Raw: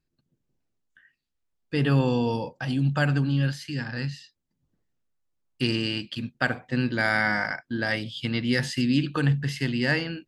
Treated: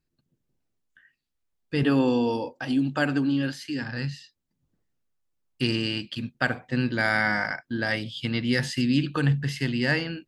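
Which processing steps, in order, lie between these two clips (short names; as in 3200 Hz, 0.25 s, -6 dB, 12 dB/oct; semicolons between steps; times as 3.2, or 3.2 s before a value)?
1.83–3.83 resonant low shelf 220 Hz -6 dB, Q 3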